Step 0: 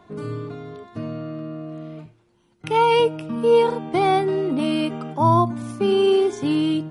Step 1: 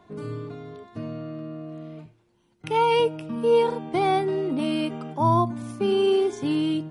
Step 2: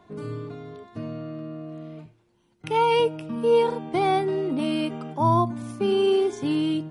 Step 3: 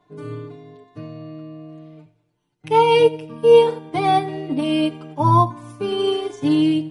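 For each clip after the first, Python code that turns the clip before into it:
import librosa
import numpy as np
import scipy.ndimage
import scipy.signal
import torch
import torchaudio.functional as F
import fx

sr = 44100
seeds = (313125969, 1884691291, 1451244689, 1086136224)

y1 = fx.peak_eq(x, sr, hz=1300.0, db=-3.0, octaves=0.25)
y1 = y1 * 10.0 ** (-3.5 / 20.0)
y2 = y1
y3 = y2 + 1.0 * np.pad(y2, (int(6.8 * sr / 1000.0), 0))[:len(y2)]
y3 = fx.echo_feedback(y3, sr, ms=87, feedback_pct=52, wet_db=-16.0)
y3 = fx.upward_expand(y3, sr, threshold_db=-39.0, expansion=1.5)
y3 = y3 * 10.0 ** (4.5 / 20.0)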